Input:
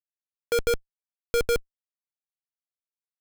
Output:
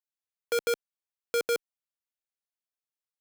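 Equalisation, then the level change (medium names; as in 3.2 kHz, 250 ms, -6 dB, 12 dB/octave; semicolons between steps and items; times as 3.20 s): high-pass 360 Hz 12 dB/octave; -2.5 dB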